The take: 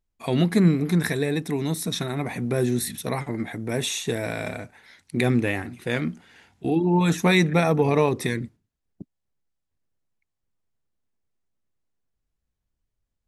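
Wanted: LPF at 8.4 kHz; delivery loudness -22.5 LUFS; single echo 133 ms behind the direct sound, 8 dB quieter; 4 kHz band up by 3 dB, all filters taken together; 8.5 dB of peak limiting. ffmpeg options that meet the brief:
-af "lowpass=8400,equalizer=f=4000:t=o:g=3.5,alimiter=limit=0.188:level=0:latency=1,aecho=1:1:133:0.398,volume=1.41"

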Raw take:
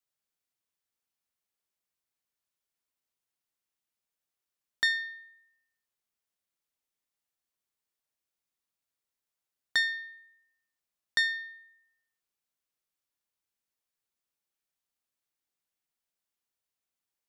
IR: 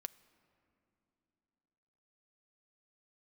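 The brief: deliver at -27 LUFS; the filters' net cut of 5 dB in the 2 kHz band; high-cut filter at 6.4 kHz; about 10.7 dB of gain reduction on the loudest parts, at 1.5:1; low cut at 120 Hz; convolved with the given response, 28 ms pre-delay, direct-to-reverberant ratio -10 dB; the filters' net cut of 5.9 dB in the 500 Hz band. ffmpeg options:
-filter_complex "[0:a]highpass=120,lowpass=6400,equalizer=f=500:t=o:g=-7.5,equalizer=f=2000:t=o:g=-5,acompressor=threshold=0.00158:ratio=1.5,asplit=2[s0][s1];[1:a]atrim=start_sample=2205,adelay=28[s2];[s1][s2]afir=irnorm=-1:irlink=0,volume=5.01[s3];[s0][s3]amix=inputs=2:normalize=0,volume=1.88"

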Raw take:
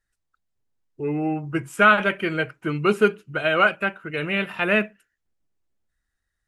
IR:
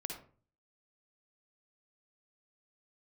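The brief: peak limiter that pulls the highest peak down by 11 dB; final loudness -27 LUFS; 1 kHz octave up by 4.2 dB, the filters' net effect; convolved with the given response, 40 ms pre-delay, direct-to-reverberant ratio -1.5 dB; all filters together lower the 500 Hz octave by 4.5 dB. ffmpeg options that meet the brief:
-filter_complex "[0:a]equalizer=f=500:t=o:g=-8.5,equalizer=f=1000:t=o:g=8,alimiter=limit=0.251:level=0:latency=1,asplit=2[s0][s1];[1:a]atrim=start_sample=2205,adelay=40[s2];[s1][s2]afir=irnorm=-1:irlink=0,volume=1.33[s3];[s0][s3]amix=inputs=2:normalize=0,volume=0.473"

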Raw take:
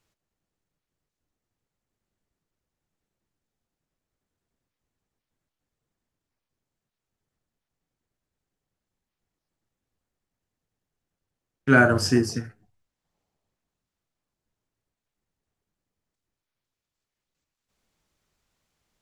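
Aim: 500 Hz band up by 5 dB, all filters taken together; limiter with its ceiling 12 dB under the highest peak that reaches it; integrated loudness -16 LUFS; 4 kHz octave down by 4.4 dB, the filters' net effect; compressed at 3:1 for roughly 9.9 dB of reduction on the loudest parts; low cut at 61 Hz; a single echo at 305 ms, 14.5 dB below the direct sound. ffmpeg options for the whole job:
-af "highpass=61,equalizer=f=500:t=o:g=7,equalizer=f=4000:t=o:g=-6.5,acompressor=threshold=0.0708:ratio=3,alimiter=limit=0.0708:level=0:latency=1,aecho=1:1:305:0.188,volume=8.91"

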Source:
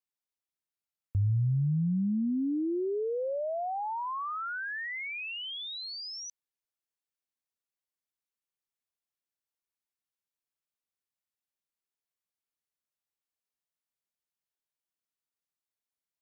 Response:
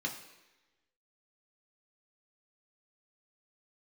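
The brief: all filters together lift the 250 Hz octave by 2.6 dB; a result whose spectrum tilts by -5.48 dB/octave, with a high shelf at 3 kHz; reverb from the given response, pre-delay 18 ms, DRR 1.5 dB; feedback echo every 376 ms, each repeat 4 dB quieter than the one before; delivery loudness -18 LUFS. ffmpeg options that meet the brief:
-filter_complex "[0:a]equalizer=f=250:t=o:g=3.5,highshelf=f=3000:g=3.5,aecho=1:1:376|752|1128|1504|1880|2256|2632|3008|3384:0.631|0.398|0.25|0.158|0.0994|0.0626|0.0394|0.0249|0.0157,asplit=2[s0][s1];[1:a]atrim=start_sample=2205,adelay=18[s2];[s1][s2]afir=irnorm=-1:irlink=0,volume=0.596[s3];[s0][s3]amix=inputs=2:normalize=0,volume=2.37"

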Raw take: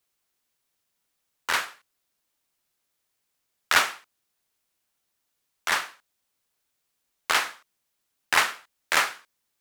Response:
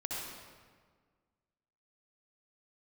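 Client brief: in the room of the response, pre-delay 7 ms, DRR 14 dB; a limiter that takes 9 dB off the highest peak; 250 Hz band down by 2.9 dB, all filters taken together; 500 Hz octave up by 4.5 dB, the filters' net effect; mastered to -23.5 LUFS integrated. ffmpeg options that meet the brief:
-filter_complex "[0:a]equalizer=f=250:t=o:g=-8,equalizer=f=500:t=o:g=7.5,alimiter=limit=0.224:level=0:latency=1,asplit=2[s0][s1];[1:a]atrim=start_sample=2205,adelay=7[s2];[s1][s2]afir=irnorm=-1:irlink=0,volume=0.141[s3];[s0][s3]amix=inputs=2:normalize=0,volume=1.88"

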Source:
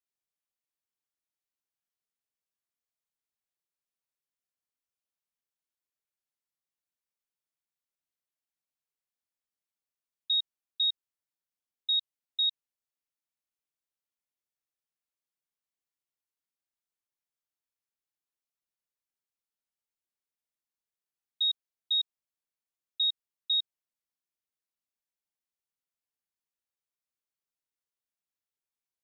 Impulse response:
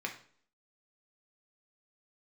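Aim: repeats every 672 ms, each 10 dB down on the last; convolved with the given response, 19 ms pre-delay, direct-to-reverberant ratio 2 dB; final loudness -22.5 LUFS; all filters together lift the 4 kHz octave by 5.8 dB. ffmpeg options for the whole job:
-filter_complex "[0:a]equalizer=f=4000:t=o:g=6,aecho=1:1:672|1344|2016|2688:0.316|0.101|0.0324|0.0104,asplit=2[s0][s1];[1:a]atrim=start_sample=2205,adelay=19[s2];[s1][s2]afir=irnorm=-1:irlink=0,volume=0.562[s3];[s0][s3]amix=inputs=2:normalize=0,volume=1.68"

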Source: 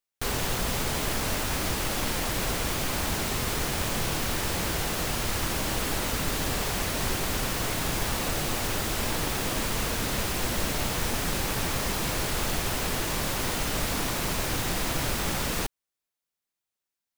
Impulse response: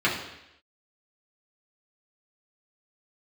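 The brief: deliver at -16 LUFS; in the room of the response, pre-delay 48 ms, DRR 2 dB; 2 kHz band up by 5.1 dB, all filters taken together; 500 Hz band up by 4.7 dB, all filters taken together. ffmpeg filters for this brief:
-filter_complex "[0:a]equalizer=f=500:t=o:g=5.5,equalizer=f=2000:t=o:g=6,asplit=2[s0][s1];[1:a]atrim=start_sample=2205,adelay=48[s2];[s1][s2]afir=irnorm=-1:irlink=0,volume=0.133[s3];[s0][s3]amix=inputs=2:normalize=0,volume=2.66"

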